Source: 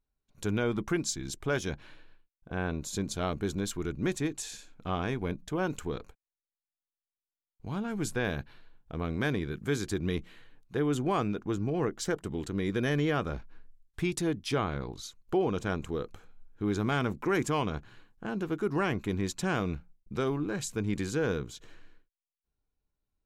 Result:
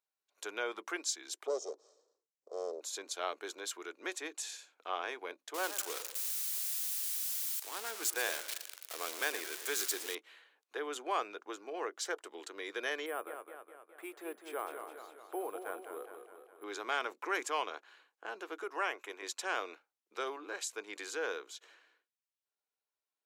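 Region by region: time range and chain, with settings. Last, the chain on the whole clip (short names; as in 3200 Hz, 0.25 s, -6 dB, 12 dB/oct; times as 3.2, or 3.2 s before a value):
1.47–2.81 minimum comb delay 1.6 ms + EQ curve 130 Hz 0 dB, 440 Hz +10 dB, 690 Hz -5 dB, 1100 Hz -8 dB, 1700 Hz -28 dB, 2700 Hz -30 dB, 5500 Hz +1 dB, 7900 Hz +1 dB, 12000 Hz -30 dB
5.54–10.15 switching spikes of -23.5 dBFS + warbling echo 0.114 s, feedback 48%, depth 177 cents, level -13 dB
13.06–16.64 tape spacing loss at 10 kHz 43 dB + careless resampling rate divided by 4×, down none, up hold + warbling echo 0.207 s, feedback 58%, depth 80 cents, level -7.5 dB
18.63–19.22 HPF 340 Hz + bell 4300 Hz -12 dB 0.29 oct
whole clip: Bessel high-pass 670 Hz, order 8; high shelf 11000 Hz -4.5 dB; gain -1 dB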